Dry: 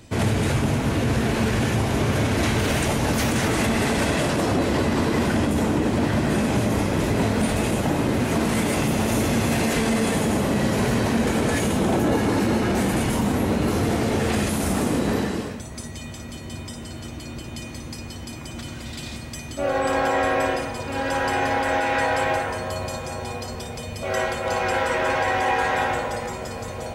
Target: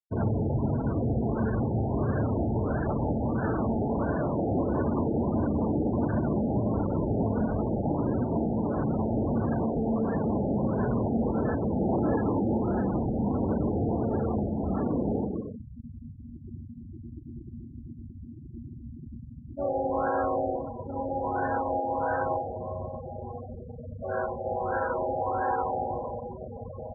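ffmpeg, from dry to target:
-filter_complex "[0:a]asettb=1/sr,asplit=3[a][b][c];[a]atrim=end=25.814[d];[b]atrim=start=25.81:end=26.41,asetpts=PTS-STARTPTS,afade=t=in:d=0.004:c=qsin,afade=t=out:st=0.596:d=0.004:c=qsin,highshelf=f=2.5k:t=q:w=3:g=13.5[e];[c]atrim=start=26.406[f];[d][e]acrossfade=d=0.004:c1=hsin:c2=qsin[g];[g][f]acrossfade=d=0.004:c1=qsin:c2=hsin,afftfilt=real='re*gte(hypot(re,im),0.0794)':imag='im*gte(hypot(re,im),0.0794)':win_size=1024:overlap=0.75,afftfilt=real='re*lt(b*sr/1024,860*pow(1800/860,0.5+0.5*sin(2*PI*1.5*pts/sr)))':imag='im*lt(b*sr/1024,860*pow(1800/860,0.5+0.5*sin(2*PI*1.5*pts/sr)))':win_size=1024:overlap=0.75,volume=-5dB"

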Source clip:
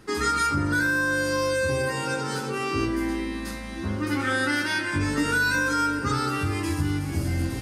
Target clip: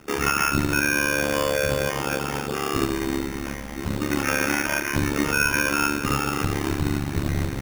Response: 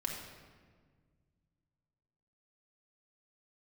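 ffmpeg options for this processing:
-filter_complex "[0:a]acrossover=split=740|2300[a][b][c];[a]acrusher=bits=3:mode=log:mix=0:aa=0.000001[d];[d][b][c]amix=inputs=3:normalize=0,tremolo=f=71:d=0.974,acrusher=samples=11:mix=1:aa=0.000001,volume=5.5dB"

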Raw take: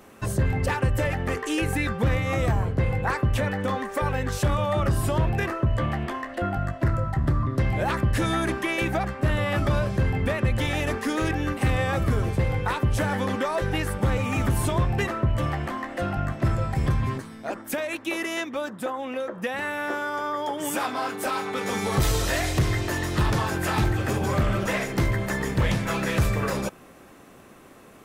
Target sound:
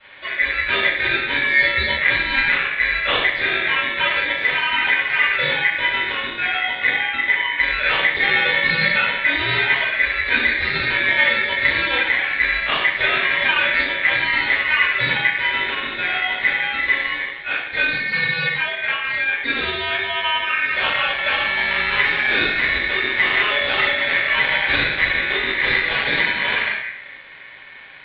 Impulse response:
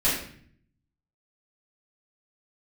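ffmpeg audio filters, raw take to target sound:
-filter_complex "[0:a]highpass=f=220:t=q:w=0.5412,highpass=f=220:t=q:w=1.307,lowpass=f=2.1k:t=q:w=0.5176,lowpass=f=2.1k:t=q:w=0.7071,lowpass=f=2.1k:t=q:w=1.932,afreqshift=-140[a];[1:a]atrim=start_sample=2205,asetrate=36162,aresample=44100[b];[a][b]afir=irnorm=-1:irlink=0,aeval=exprs='val(0)*sin(2*PI*2000*n/s)':c=same,volume=-4dB"

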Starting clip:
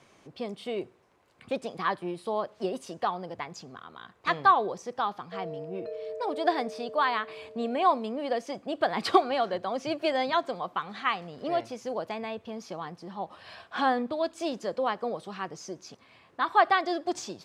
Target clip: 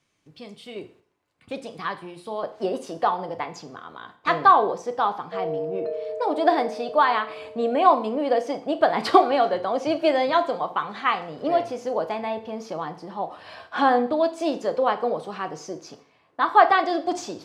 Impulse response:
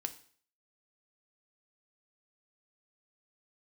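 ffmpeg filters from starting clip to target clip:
-filter_complex "[0:a]agate=range=-10dB:threshold=-53dB:ratio=16:detection=peak,asetnsamples=n=441:p=0,asendcmd='0.76 equalizer g -3.5;2.43 equalizer g 6',equalizer=f=610:w=0.45:g=-10[a];[1:a]atrim=start_sample=2205[b];[a][b]afir=irnorm=-1:irlink=0,volume=2.5dB"

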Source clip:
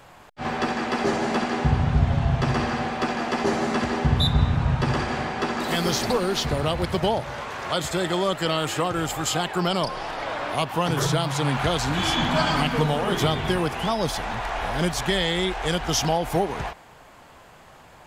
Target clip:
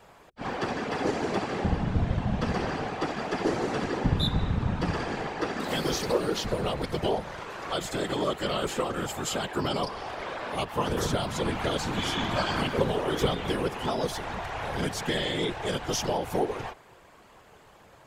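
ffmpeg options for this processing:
-af "equalizer=f=440:t=o:w=0.24:g=8.5,afftfilt=real='hypot(re,im)*cos(2*PI*random(0))':imag='hypot(re,im)*sin(2*PI*random(1))':win_size=512:overlap=0.75"

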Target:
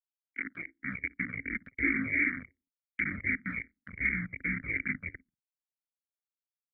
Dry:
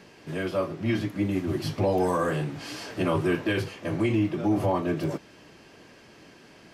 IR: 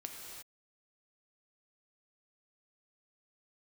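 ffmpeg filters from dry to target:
-filter_complex "[0:a]aresample=8000,acrusher=bits=3:mix=0:aa=0.000001,aresample=44100,asubboost=boost=10.5:cutoff=160,afftdn=nr=17:nf=-41,asplit=2[a][b];[b]adelay=61,lowpass=f=1.2k:p=1,volume=-19dB,asplit=2[c][d];[d]adelay=61,lowpass=f=1.2k:p=1,volume=0.45,asplit=2[e][f];[f]adelay=61,lowpass=f=1.2k:p=1,volume=0.45,asplit=2[g][h];[h]adelay=61,lowpass=f=1.2k:p=1,volume=0.45[i];[c][e][g][i]amix=inputs=4:normalize=0[j];[a][j]amix=inputs=2:normalize=0,aexciter=amount=9.8:drive=2.2:freq=2.3k,asetrate=25476,aresample=44100,atempo=1.73107,dynaudnorm=f=540:g=3:m=10dB,agate=range=-13dB:threshold=-25dB:ratio=16:detection=peak,asplit=3[k][l][m];[k]bandpass=f=270:t=q:w=8,volume=0dB[n];[l]bandpass=f=2.29k:t=q:w=8,volume=-6dB[o];[m]bandpass=f=3.01k:t=q:w=8,volume=-9dB[p];[n][o][p]amix=inputs=3:normalize=0,asplit=2[q][r];[r]afreqshift=-2.7[s];[q][s]amix=inputs=2:normalize=1"

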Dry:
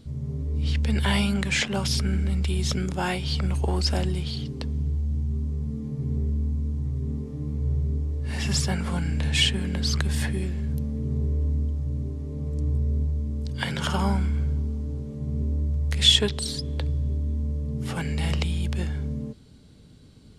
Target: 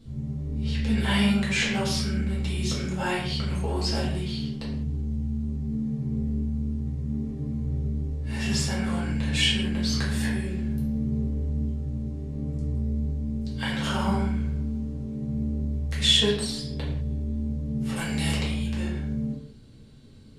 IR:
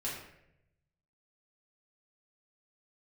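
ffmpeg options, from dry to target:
-filter_complex "[0:a]asettb=1/sr,asplit=3[a][b][c];[a]atrim=end=17.964[d];[b]atrim=start=17.96:end=18.37,asetpts=PTS-STARTPTS,afade=t=in:d=0.004:c=qsin,afade=t=out:st=0.406:d=0.004:c=qsin,highshelf=f=3.6k:g=11[e];[c]atrim=start=18.366[f];[d][e]acrossfade=d=0.004:c1=hsin:c2=qsin[g];[g][f]acrossfade=d=0.004:c1=qsin:c2=hsin[h];[1:a]atrim=start_sample=2205,afade=t=out:st=0.26:d=0.01,atrim=end_sample=11907[i];[h][i]afir=irnorm=-1:irlink=0,volume=-2.5dB"

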